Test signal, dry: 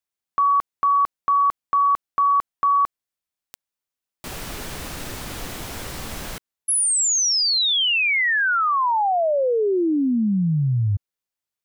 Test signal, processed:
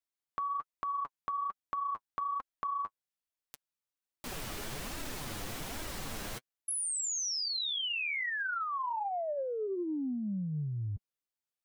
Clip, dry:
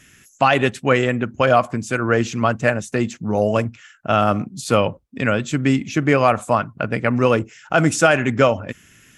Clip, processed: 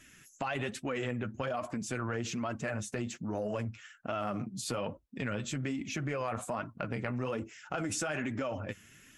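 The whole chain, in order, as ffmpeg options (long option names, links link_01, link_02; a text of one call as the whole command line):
ffmpeg -i in.wav -af "flanger=delay=3:depth=6.9:regen=27:speed=1.2:shape=sinusoidal,acompressor=threshold=-31dB:ratio=12:attack=15:release=20:knee=6:detection=rms,volume=-3.5dB" out.wav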